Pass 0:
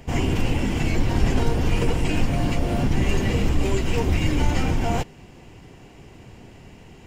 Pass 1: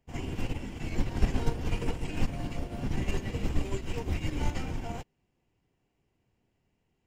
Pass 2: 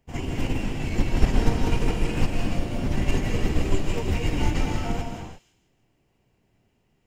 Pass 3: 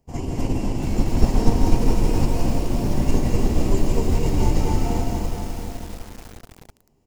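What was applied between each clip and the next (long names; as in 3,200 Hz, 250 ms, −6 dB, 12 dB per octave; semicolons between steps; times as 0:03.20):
expander for the loud parts 2.5 to 1, over −32 dBFS; level −3 dB
delay with a high-pass on its return 162 ms, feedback 36%, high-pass 3,100 Hz, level −10.5 dB; on a send at −1.5 dB: convolution reverb, pre-delay 110 ms; on the sum: level +5.5 dB
flat-topped bell 2,200 Hz −9.5 dB; on a send: repeating echo 252 ms, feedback 45%, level −6 dB; on the sum: feedback echo at a low word length 684 ms, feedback 35%, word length 6 bits, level −8 dB; level +2.5 dB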